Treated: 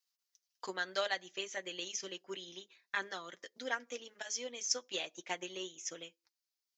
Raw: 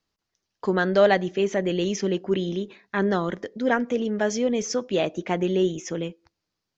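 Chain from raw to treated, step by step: transient shaper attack +8 dB, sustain -4 dB; differentiator; comb of notches 210 Hz; trim +1 dB

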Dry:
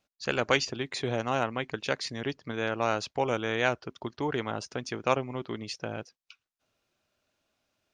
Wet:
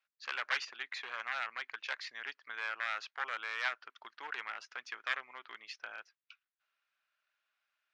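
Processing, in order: one-sided wavefolder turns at -24 dBFS; ladder band-pass 1.9 kHz, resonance 35%; trim +8 dB

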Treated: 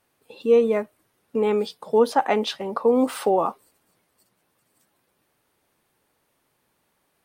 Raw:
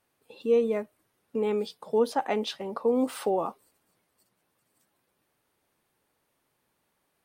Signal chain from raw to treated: dynamic bell 1.2 kHz, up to +4 dB, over -39 dBFS, Q 0.76; trim +5 dB

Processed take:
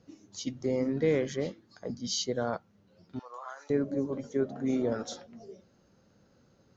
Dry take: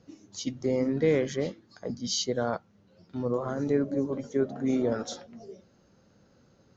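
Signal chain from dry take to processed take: 3.19–3.70 s: high-pass 860 Hz 24 dB/octave; trim -2.5 dB

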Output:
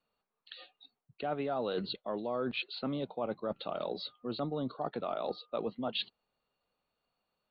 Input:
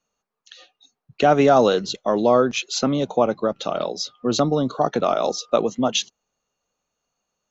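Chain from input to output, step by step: Chebyshev low-pass 4.5 kHz, order 8; reverse; compression 5:1, threshold -30 dBFS, peak gain reduction 16.5 dB; reverse; trim -3.5 dB

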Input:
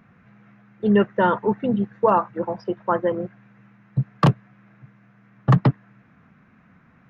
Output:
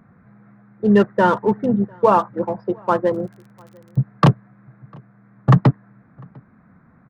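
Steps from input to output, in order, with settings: local Wiener filter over 15 samples; 3.12–3.98 s: crackle 38 per s -41 dBFS; echo from a far wall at 120 m, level -29 dB; trim +3.5 dB

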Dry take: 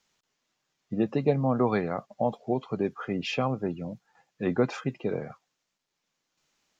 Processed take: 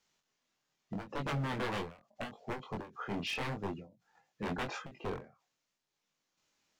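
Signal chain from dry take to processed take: wavefolder -26 dBFS; chorus 0.82 Hz, delay 20 ms, depth 5 ms; endings held to a fixed fall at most 150 dB/s; trim -1 dB

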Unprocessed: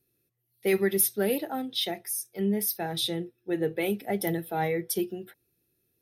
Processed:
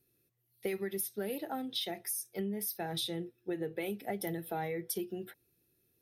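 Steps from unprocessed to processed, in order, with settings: compression 10:1, threshold -33 dBFS, peak gain reduction 14.5 dB

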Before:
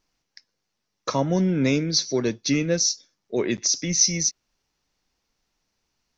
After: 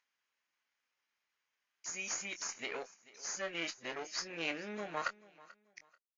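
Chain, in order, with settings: reverse the whole clip; in parallel at 0 dB: compression 16:1, threshold -35 dBFS, peak gain reduction 22 dB; on the sum: one-sided clip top -22.5 dBFS, bottom -8 dBFS; pitch shift +2 st; gate -50 dBFS, range -46 dB; band-pass filter 1.9 kHz, Q 1.5; upward compressor, threshold -49 dBFS; on a send: feedback delay 437 ms, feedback 28%, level -20 dB; on the sum: Chebyshev shaper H 3 -20 dB, 8 -41 dB, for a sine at -17 dBFS; doubling 24 ms -9.5 dB; trim -1.5 dB; MP3 56 kbps 16 kHz

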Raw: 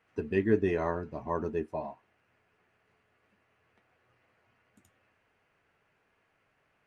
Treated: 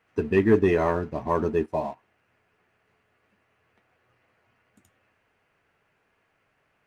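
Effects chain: waveshaping leveller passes 1; trim +4.5 dB

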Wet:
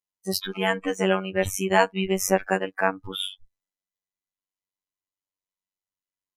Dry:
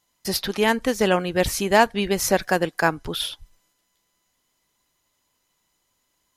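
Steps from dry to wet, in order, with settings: spectral noise reduction 25 dB; robot voice 95.2 Hz

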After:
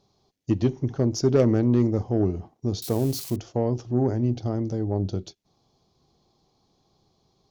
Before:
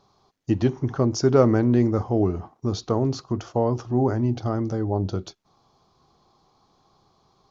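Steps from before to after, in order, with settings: 2.82–3.36 s: zero-crossing glitches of -24.5 dBFS; peaking EQ 1.2 kHz -12.5 dB 1.2 oct; Chebyshev shaper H 4 -19 dB, 6 -22 dB, 7 -34 dB, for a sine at -6 dBFS

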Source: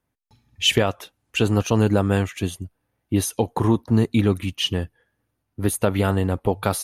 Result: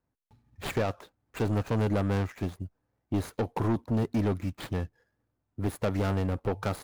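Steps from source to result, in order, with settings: median filter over 15 samples; saturation -18.5 dBFS, distortion -9 dB; trim -3.5 dB

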